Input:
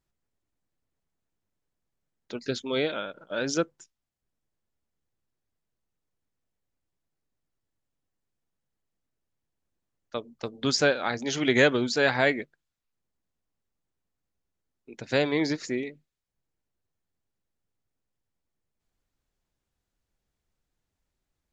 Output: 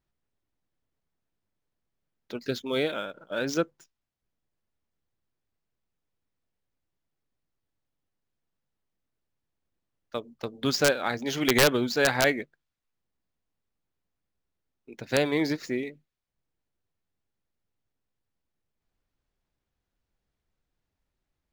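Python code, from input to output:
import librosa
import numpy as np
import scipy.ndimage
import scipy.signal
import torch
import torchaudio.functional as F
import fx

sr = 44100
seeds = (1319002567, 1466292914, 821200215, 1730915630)

y = scipy.signal.medfilt(x, 5)
y = (np.mod(10.0 ** (10.0 / 20.0) * y + 1.0, 2.0) - 1.0) / 10.0 ** (10.0 / 20.0)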